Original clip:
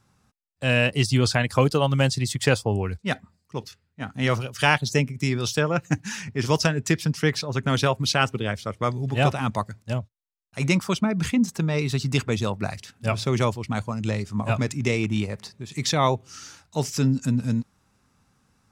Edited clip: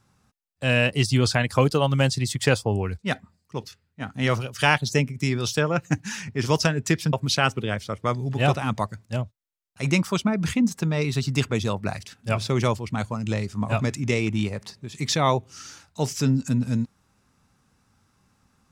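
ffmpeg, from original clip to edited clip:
ffmpeg -i in.wav -filter_complex "[0:a]asplit=2[link_01][link_02];[link_01]atrim=end=7.132[link_03];[link_02]atrim=start=7.898[link_04];[link_03][link_04]acrossfade=duration=0.004:curve1=hsin:curve2=hsin" out.wav

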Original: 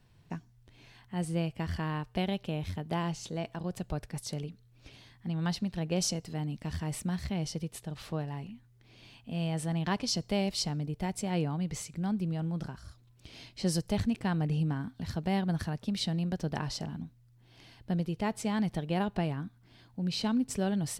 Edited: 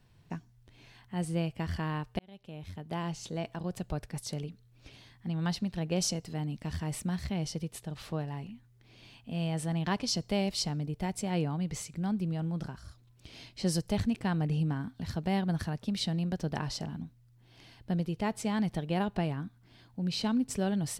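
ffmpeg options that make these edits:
ffmpeg -i in.wav -filter_complex "[0:a]asplit=2[link_01][link_02];[link_01]atrim=end=2.19,asetpts=PTS-STARTPTS,afade=type=out:start_time=2.186:duration=0.004:curve=hsin[link_03];[link_02]atrim=start=2.19,asetpts=PTS-STARTPTS,afade=type=in:duration=1.13[link_04];[link_03][link_04]concat=n=2:v=0:a=1" out.wav

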